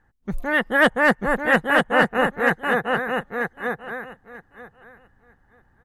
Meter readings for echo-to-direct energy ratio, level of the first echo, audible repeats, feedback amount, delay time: -4.0 dB, -4.0 dB, 2, 16%, 938 ms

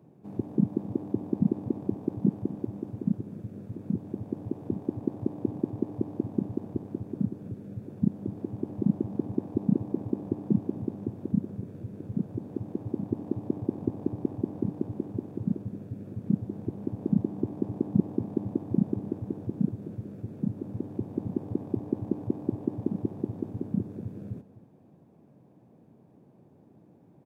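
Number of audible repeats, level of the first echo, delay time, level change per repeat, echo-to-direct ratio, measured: 1, -16.5 dB, 254 ms, -15.0 dB, -16.5 dB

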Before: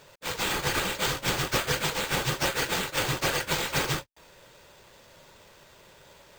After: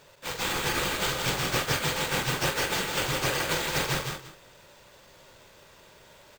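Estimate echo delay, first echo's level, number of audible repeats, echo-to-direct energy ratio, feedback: 45 ms, -9.0 dB, 5, -2.0 dB, no regular repeats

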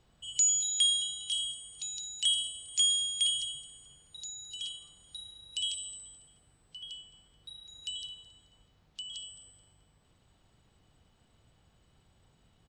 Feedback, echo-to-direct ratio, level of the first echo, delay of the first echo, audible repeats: 44%, -20.0 dB, -21.0 dB, 216 ms, 2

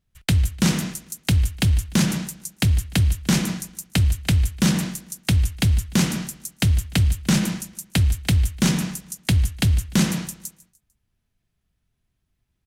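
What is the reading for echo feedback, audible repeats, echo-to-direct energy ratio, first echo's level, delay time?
41%, 3, -18.0 dB, -19.0 dB, 149 ms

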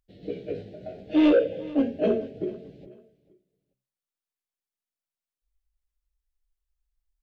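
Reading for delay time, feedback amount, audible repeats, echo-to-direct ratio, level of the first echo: 440 ms, 27%, 2, -19.0 dB, -19.5 dB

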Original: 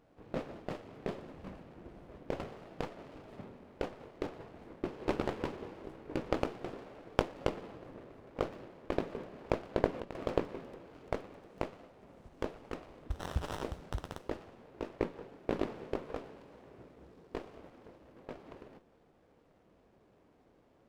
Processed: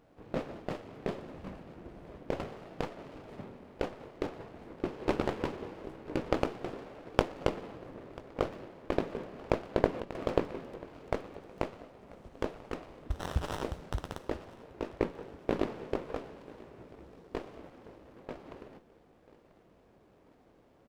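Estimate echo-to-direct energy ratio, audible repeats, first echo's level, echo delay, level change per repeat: -20.5 dB, 3, -22.0 dB, 989 ms, -5.5 dB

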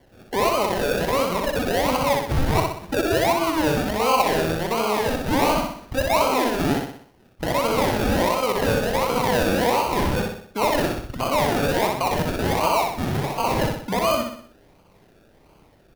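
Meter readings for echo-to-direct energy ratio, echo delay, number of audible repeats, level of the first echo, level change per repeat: -2.5 dB, 62 ms, 5, -3.5 dB, -6.5 dB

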